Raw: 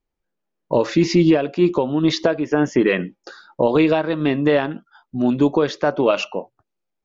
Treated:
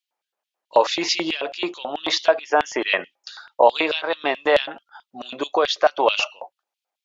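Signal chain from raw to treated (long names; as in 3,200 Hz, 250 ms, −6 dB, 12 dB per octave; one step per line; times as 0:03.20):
auto-filter high-pass square 4.6 Hz 750–3,200 Hz
0:05.20–0:05.88: notch filter 880 Hz, Q 5.1
level +2.5 dB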